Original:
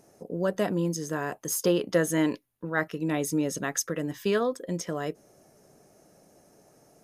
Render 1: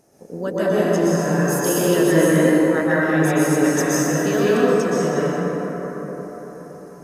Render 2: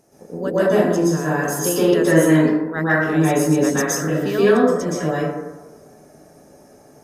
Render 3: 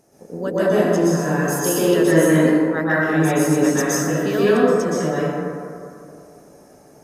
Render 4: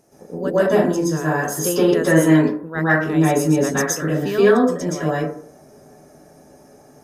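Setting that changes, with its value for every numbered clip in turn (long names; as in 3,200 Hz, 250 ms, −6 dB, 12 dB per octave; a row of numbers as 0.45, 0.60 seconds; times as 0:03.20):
dense smooth reverb, RT60: 5.1, 1.1, 2.4, 0.52 seconds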